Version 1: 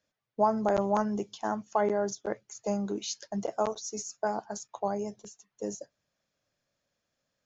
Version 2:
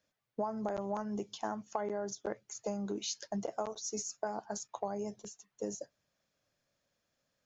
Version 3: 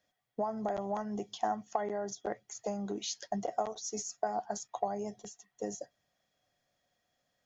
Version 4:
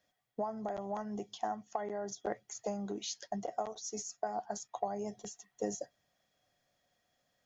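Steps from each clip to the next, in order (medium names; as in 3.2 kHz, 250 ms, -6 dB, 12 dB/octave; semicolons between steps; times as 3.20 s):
compression 6:1, threshold -33 dBFS, peak gain reduction 13 dB
small resonant body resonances 730/1900/3300 Hz, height 14 dB, ringing for 65 ms
gain riding within 5 dB 0.5 s; trim -2.5 dB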